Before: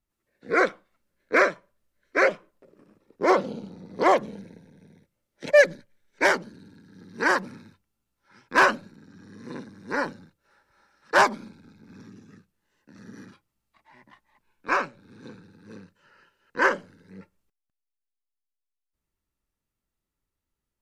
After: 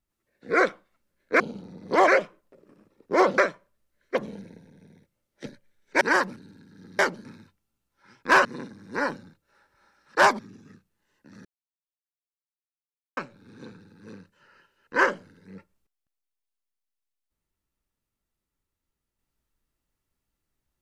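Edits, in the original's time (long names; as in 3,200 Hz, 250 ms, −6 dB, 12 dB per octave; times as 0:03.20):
0:01.40–0:02.17: swap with 0:03.48–0:04.15
0:05.46–0:05.72: remove
0:06.27–0:06.53: swap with 0:07.16–0:07.51
0:08.71–0:09.41: remove
0:11.35–0:12.02: remove
0:13.08–0:14.80: silence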